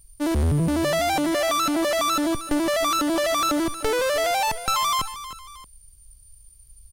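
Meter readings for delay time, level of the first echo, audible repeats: 314 ms, −13.5 dB, 2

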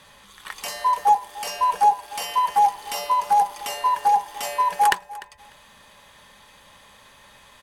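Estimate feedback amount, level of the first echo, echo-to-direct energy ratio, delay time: 17%, −19.0 dB, −19.0 dB, 298 ms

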